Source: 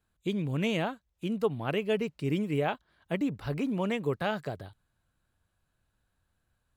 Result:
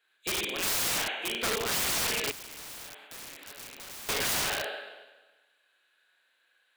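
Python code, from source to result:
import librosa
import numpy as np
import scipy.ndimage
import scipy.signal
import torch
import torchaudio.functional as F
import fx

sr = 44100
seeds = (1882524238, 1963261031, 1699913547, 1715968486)

y = scipy.signal.sosfilt(scipy.signal.butter(4, 390.0, 'highpass', fs=sr, output='sos'), x)
y = fx.band_shelf(y, sr, hz=2500.0, db=12.5, octaves=1.7)
y = fx.rev_schroeder(y, sr, rt60_s=1.2, comb_ms=30, drr_db=-2.0)
y = (np.mod(10.0 ** (24.0 / 20.0) * y + 1.0, 2.0) - 1.0) / 10.0 ** (24.0 / 20.0)
y = fx.spectral_comp(y, sr, ratio=2.0, at=(2.31, 4.09))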